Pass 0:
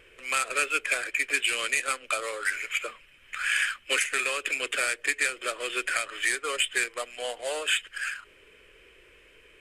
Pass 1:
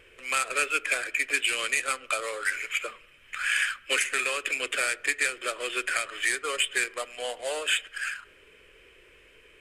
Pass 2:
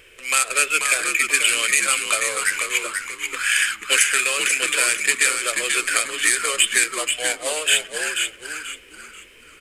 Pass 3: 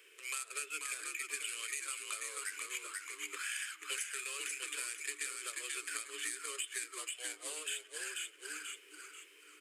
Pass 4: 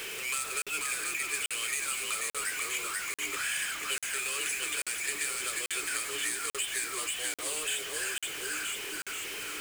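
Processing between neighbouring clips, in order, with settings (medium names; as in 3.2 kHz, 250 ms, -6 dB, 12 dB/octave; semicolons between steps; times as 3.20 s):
on a send at -18 dB: low-pass 2.2 kHz 12 dB/octave + reverberation RT60 0.90 s, pre-delay 3 ms
treble shelf 3.6 kHz +11.5 dB; on a send: frequency-shifting echo 486 ms, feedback 31%, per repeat -76 Hz, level -5.5 dB; on the sum: trim +3 dB
peaking EQ 840 Hz -14.5 dB 2.7 oct; compression 3:1, threshold -34 dBFS, peak gain reduction 15 dB; rippled Chebyshev high-pass 290 Hz, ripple 9 dB; trim +1 dB
jump at every zero crossing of -37 dBFS; repeats whose band climbs or falls 460 ms, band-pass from 740 Hz, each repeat 1.4 oct, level -9 dB; crackling interface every 0.84 s, samples 2048, zero, from 0.62 s; trim +3.5 dB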